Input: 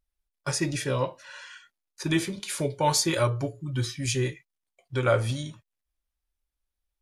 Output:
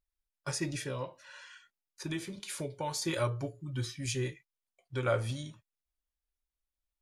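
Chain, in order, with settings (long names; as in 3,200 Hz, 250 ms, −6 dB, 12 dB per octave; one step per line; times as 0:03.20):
0:00.79–0:03.02: downward compressor 2.5 to 1, threshold −28 dBFS, peak gain reduction 7 dB
level −7 dB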